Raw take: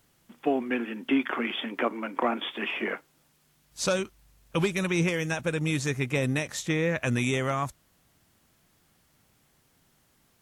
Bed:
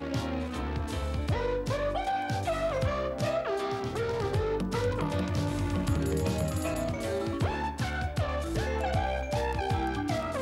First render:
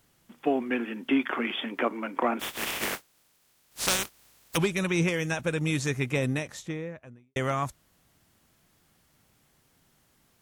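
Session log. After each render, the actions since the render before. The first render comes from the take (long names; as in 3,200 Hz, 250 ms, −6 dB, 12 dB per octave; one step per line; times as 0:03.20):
0:02.39–0:04.56: compressing power law on the bin magnitudes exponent 0.27
0:06.05–0:07.36: fade out and dull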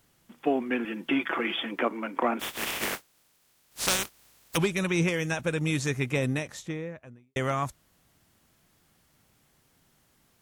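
0:00.84–0:01.76: comb filter 6 ms, depth 69%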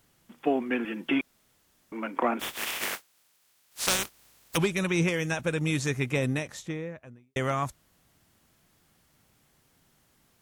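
0:01.21–0:01.92: fill with room tone
0:02.54–0:03.88: low-shelf EQ 490 Hz −9.5 dB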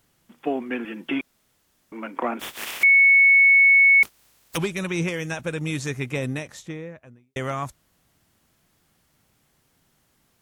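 0:02.83–0:04.03: beep over 2,210 Hz −11 dBFS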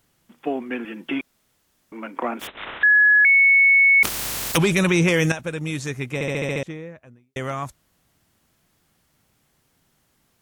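0:02.47–0:03.25: voice inversion scrambler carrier 3,900 Hz
0:03.97–0:05.32: envelope flattener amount 70%
0:06.14: stutter in place 0.07 s, 7 plays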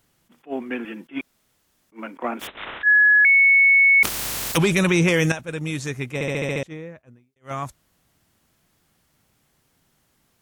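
level that may rise only so fast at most 350 dB per second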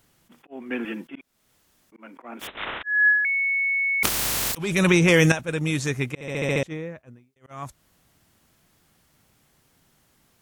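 volume swells 395 ms
compressor whose output falls as the input rises −18 dBFS, ratio −0.5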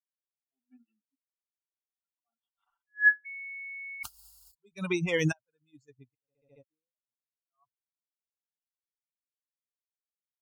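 spectral dynamics exaggerated over time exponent 3
expander for the loud parts 2.5 to 1, over −37 dBFS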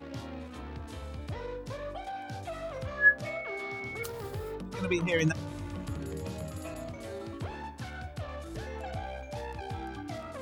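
mix in bed −9 dB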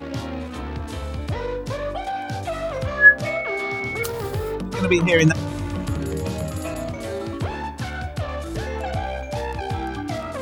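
level +11.5 dB
brickwall limiter −2 dBFS, peak gain reduction 1.5 dB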